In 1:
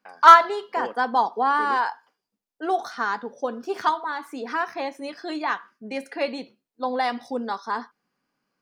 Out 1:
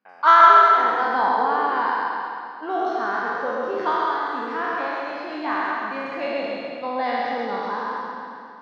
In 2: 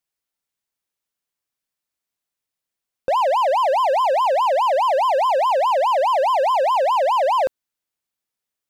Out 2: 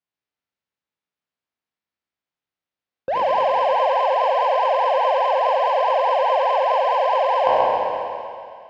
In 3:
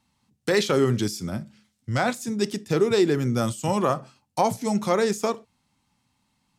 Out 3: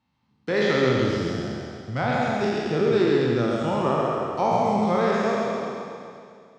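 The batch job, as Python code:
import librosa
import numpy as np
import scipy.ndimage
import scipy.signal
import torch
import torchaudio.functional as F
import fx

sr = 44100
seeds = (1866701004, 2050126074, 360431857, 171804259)

p1 = fx.spec_trails(x, sr, decay_s=2.33)
p2 = scipy.signal.sosfilt(scipy.signal.butter(2, 57.0, 'highpass', fs=sr, output='sos'), p1)
p3 = fx.air_absorb(p2, sr, metres=190.0)
p4 = p3 + fx.echo_feedback(p3, sr, ms=134, feedback_pct=43, wet_db=-3, dry=0)
y = p4 * 10.0 ** (-4.5 / 20.0)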